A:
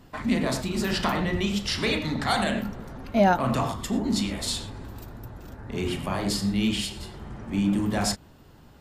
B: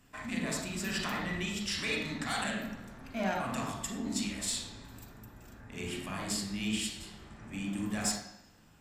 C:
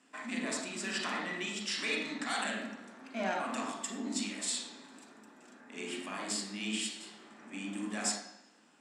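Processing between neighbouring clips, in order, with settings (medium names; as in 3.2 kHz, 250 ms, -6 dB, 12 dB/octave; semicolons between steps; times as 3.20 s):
de-hum 67.8 Hz, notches 35; saturation -16 dBFS, distortion -18 dB; reverberation RT60 1.0 s, pre-delay 40 ms, DRR 3.5 dB; trim -6 dB
elliptic band-pass 240–9300 Hz, stop band 40 dB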